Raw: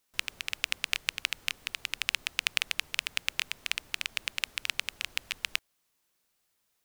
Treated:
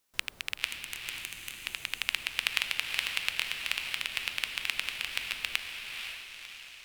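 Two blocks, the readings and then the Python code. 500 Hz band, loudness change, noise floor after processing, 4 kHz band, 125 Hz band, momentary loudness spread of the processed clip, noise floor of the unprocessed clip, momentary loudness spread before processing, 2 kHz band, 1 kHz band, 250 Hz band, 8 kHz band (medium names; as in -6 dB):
+1.0 dB, -0.5 dB, -56 dBFS, 0.0 dB, +2.0 dB, 9 LU, -76 dBFS, 5 LU, +0.5 dB, +1.0 dB, +1.5 dB, -2.0 dB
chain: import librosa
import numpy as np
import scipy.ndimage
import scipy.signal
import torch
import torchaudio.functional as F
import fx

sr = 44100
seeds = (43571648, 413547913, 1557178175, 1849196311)

y = fx.spec_box(x, sr, start_s=0.66, length_s=1.0, low_hz=390.0, high_hz=5900.0, gain_db=-12)
y = fx.echo_diffused(y, sr, ms=516, feedback_pct=48, wet_db=-4.5)
y = fx.dynamic_eq(y, sr, hz=6400.0, q=1.7, threshold_db=-52.0, ratio=4.0, max_db=-6)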